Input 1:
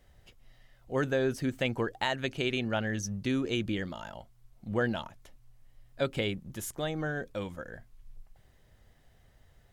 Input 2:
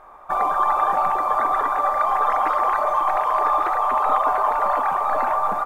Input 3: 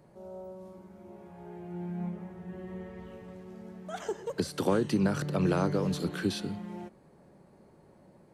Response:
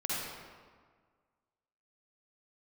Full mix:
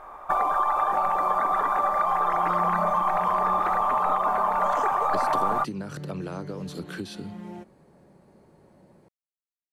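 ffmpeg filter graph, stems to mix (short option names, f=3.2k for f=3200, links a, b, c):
-filter_complex "[1:a]acompressor=threshold=-23dB:ratio=6,volume=2.5dB[a];[2:a]adelay=750,volume=2dB,acompressor=threshold=-32dB:ratio=4,volume=0dB[b];[a][b]amix=inputs=2:normalize=0"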